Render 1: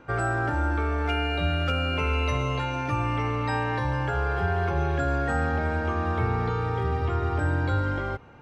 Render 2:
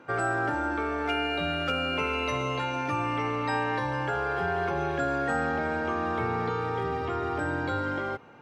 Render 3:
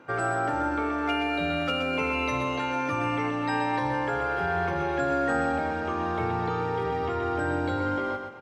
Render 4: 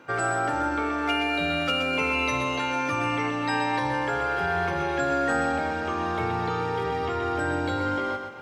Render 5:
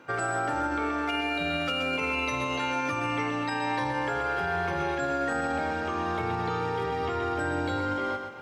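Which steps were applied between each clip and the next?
high-pass filter 180 Hz 12 dB per octave
repeating echo 126 ms, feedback 36%, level −6.5 dB
high-shelf EQ 2,200 Hz +7.5 dB; reversed playback; upward compression, threshold −38 dBFS; reversed playback
brickwall limiter −18.5 dBFS, peak gain reduction 6 dB; level −1.5 dB

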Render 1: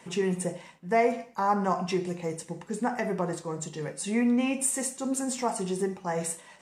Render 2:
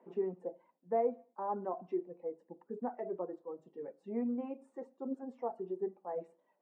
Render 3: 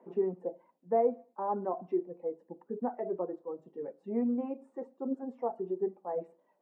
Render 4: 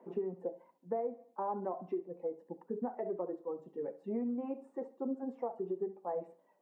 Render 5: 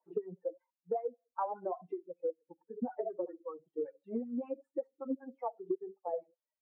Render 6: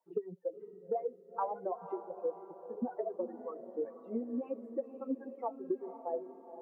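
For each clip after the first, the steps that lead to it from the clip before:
high-pass filter 250 Hz 24 dB per octave; reverb reduction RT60 2 s; Chebyshev low-pass filter 590 Hz, order 2; level −5.5 dB
high-shelf EQ 2,200 Hz −9.5 dB; level +5 dB
downward compressor 6 to 1, threshold −34 dBFS, peak gain reduction 11.5 dB; feedback echo with a high-pass in the loop 68 ms, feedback 34%, high-pass 210 Hz, level −16 dB; level +1 dB
spectral dynamics exaggerated over time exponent 2; LFO wah 5.2 Hz 330–1,400 Hz, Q 2.5; downward compressor 6 to 1, threshold −46 dBFS, peak gain reduction 9.5 dB; level +15 dB
feedback delay with all-pass diffusion 497 ms, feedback 48%, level −11 dB

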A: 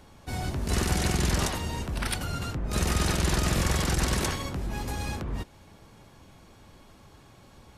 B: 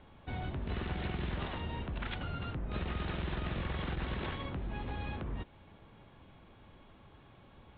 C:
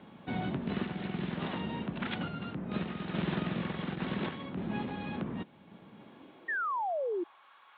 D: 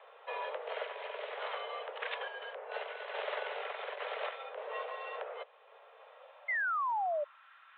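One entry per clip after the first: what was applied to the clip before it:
Butterworth low-pass 3,700 Hz 72 dB per octave; downward compressor 3 to 1, threshold −30 dBFS, peak gain reduction 7.5 dB; level −4.5 dB
sample-and-hold tremolo; high-pass filter sweep 190 Hz → 1,200 Hz, 0:05.92–0:07.48; sound drawn into the spectrogram fall, 0:06.48–0:07.24, 330–1,900 Hz −37 dBFS; level +4.5 dB
background noise brown −73 dBFS; single-sideband voice off tune +240 Hz 290–3,200 Hz

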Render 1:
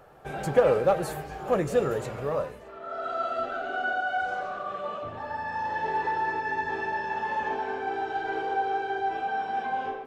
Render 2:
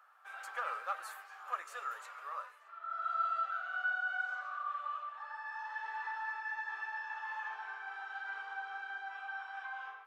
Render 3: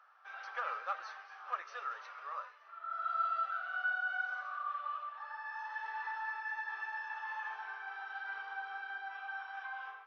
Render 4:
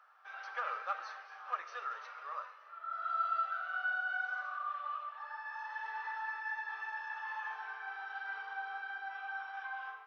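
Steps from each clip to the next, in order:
four-pole ladder high-pass 1,100 Hz, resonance 60%; level −1 dB
brick-wall band-pass 320–6,200 Hz
convolution reverb RT60 1.4 s, pre-delay 6 ms, DRR 10.5 dB

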